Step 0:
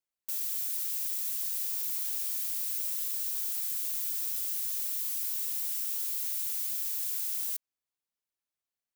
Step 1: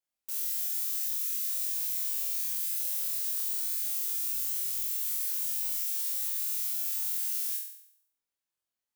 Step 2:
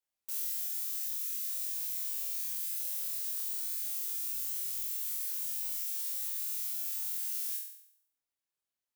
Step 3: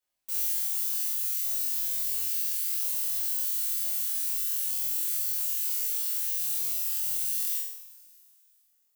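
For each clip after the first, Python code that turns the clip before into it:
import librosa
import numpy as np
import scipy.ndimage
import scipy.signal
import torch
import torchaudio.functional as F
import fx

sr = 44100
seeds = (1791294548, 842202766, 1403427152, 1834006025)

y1 = fx.room_flutter(x, sr, wall_m=4.0, rt60_s=0.67)
y1 = y1 * 10.0 ** (-3.0 / 20.0)
y2 = fx.rider(y1, sr, range_db=3, speed_s=0.5)
y2 = y2 * 10.0 ** (-4.0 / 20.0)
y3 = fx.rev_double_slope(y2, sr, seeds[0], early_s=0.39, late_s=2.8, knee_db=-22, drr_db=-3.0)
y3 = y3 * 10.0 ** (1.5 / 20.0)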